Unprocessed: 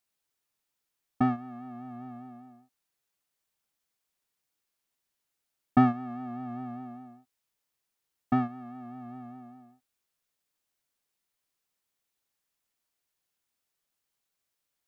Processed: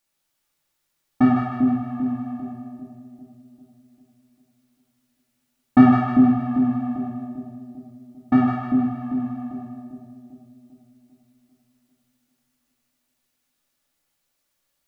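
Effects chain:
echo with a time of its own for lows and highs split 590 Hz, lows 396 ms, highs 154 ms, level −4 dB
convolution reverb RT60 0.60 s, pre-delay 3 ms, DRR 0 dB
level +4.5 dB

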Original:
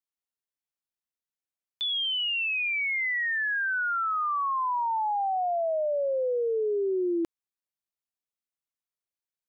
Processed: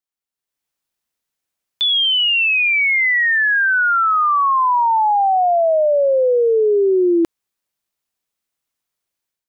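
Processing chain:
automatic gain control gain up to 11 dB
level +1.5 dB

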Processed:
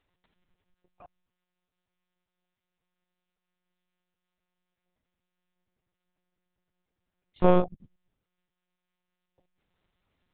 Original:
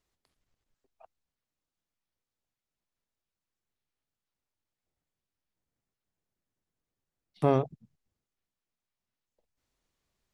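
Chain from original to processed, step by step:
one-pitch LPC vocoder at 8 kHz 180 Hz
level +5.5 dB

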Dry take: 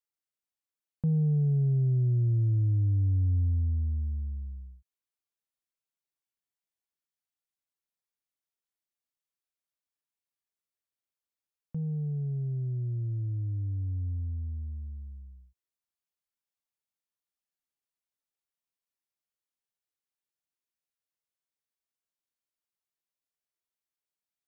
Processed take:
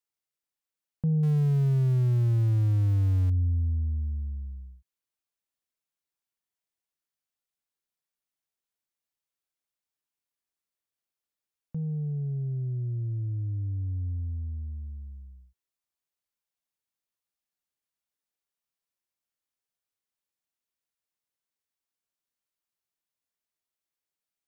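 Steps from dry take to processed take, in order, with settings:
0:01.23–0:03.30: converter with a step at zero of −38 dBFS
level +1 dB

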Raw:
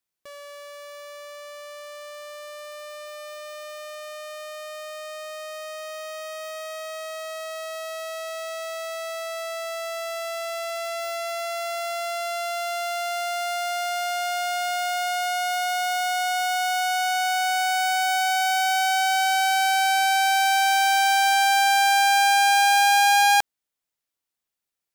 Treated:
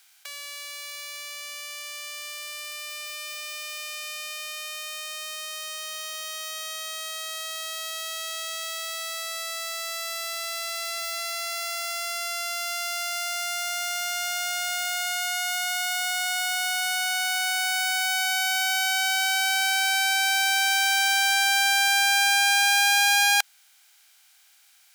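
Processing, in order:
compressor on every frequency bin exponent 0.6
high-pass filter 1,400 Hz 12 dB per octave
level +1 dB

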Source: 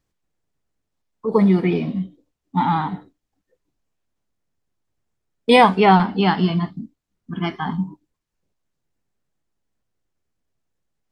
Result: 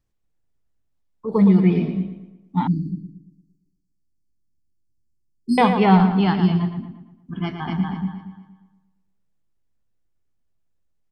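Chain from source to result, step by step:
0:07.43–0:07.87: delay throw 240 ms, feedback 25%, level −3 dB
feedback echo with a low-pass in the loop 115 ms, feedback 47%, low-pass 4,000 Hz, level −8 dB
dynamic equaliser 190 Hz, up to +4 dB, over −24 dBFS
0:02.67–0:05.58: linear-phase brick-wall band-stop 400–4,200 Hz
low-shelf EQ 140 Hz +9 dB
level −5.5 dB

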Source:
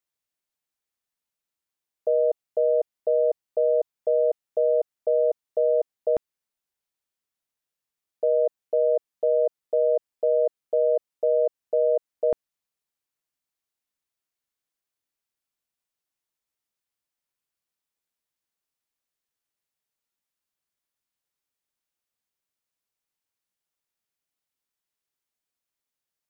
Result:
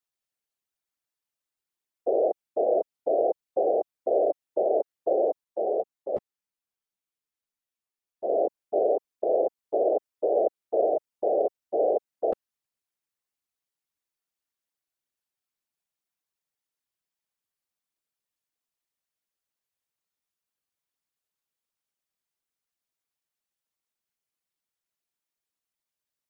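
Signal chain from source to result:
random phases in short frames
0:05.44–0:08.30: string-ensemble chorus
level −2.5 dB

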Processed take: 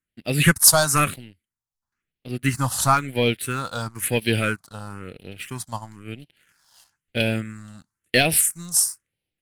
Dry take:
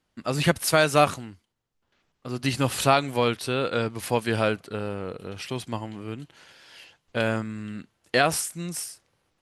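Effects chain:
high-shelf EQ 2,800 Hz +9 dB, from 0:02.31 +3.5 dB, from 0:03.34 +9.5 dB
leveller curve on the samples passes 2
all-pass phaser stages 4, 1 Hz, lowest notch 380–1,200 Hz
expander for the loud parts 1.5 to 1, over −31 dBFS
level +1 dB

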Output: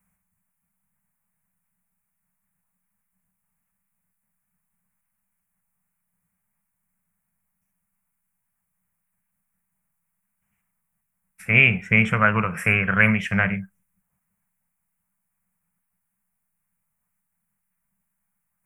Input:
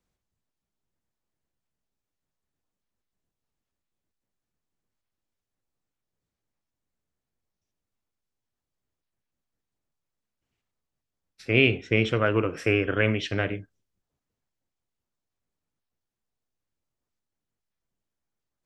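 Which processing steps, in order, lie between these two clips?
drawn EQ curve 130 Hz 0 dB, 190 Hz +14 dB, 290 Hz −18 dB, 920 Hz +5 dB, 2,300 Hz +7 dB, 4,100 Hz −21 dB, 9,600 Hz +14 dB
level +3.5 dB

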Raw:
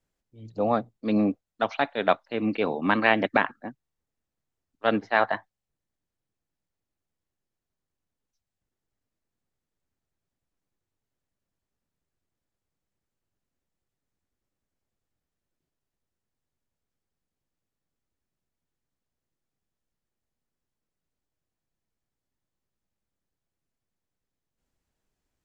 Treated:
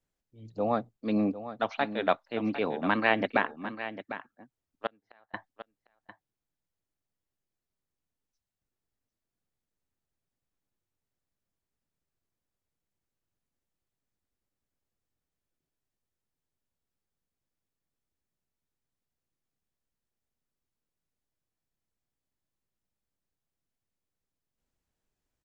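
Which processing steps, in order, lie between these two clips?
0:04.86–0:05.34: gate with flip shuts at −23 dBFS, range −37 dB
on a send: single-tap delay 751 ms −12 dB
on the sum: level −4 dB

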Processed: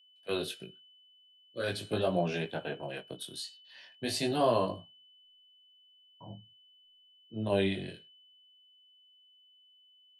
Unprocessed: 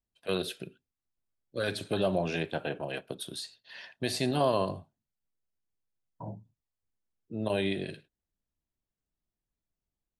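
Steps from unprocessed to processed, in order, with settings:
chorus effect 0.43 Hz, delay 17 ms, depth 6.4 ms
steady tone 3,000 Hz −53 dBFS
multiband upward and downward expander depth 40%

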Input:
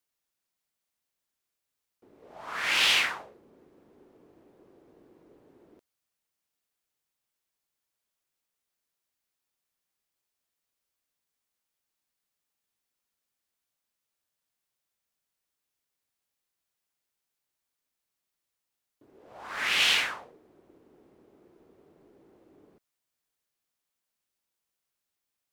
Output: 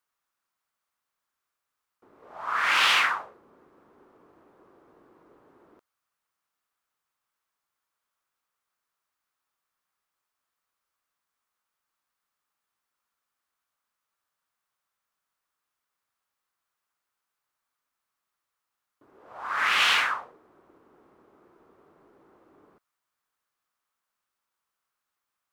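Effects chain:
parametric band 1,200 Hz +14 dB 1.2 octaves
level −2.5 dB

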